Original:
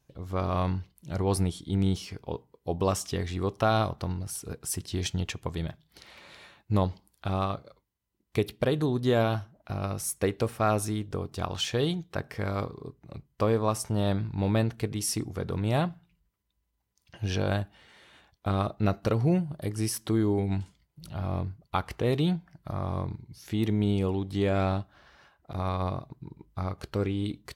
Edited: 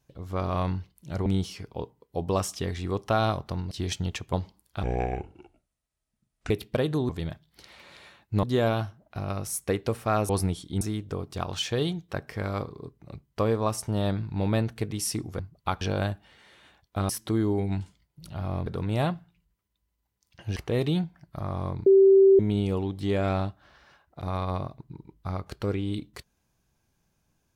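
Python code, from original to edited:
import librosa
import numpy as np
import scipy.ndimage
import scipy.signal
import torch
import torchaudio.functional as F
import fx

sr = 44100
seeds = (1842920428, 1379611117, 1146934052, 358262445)

y = fx.edit(x, sr, fx.move(start_s=1.26, length_s=0.52, to_s=10.83),
    fx.cut(start_s=4.23, length_s=0.62),
    fx.move(start_s=5.47, length_s=1.34, to_s=8.97),
    fx.speed_span(start_s=7.31, length_s=1.07, speed=0.64),
    fx.swap(start_s=15.41, length_s=1.9, other_s=21.46, other_length_s=0.42),
    fx.cut(start_s=18.59, length_s=1.3),
    fx.bleep(start_s=23.18, length_s=0.53, hz=388.0, db=-12.5), tone=tone)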